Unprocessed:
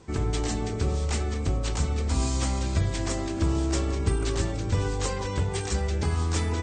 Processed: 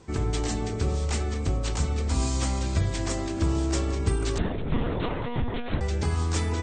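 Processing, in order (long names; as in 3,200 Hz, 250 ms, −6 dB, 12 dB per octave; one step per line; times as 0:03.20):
0:04.38–0:05.81: one-pitch LPC vocoder at 8 kHz 240 Hz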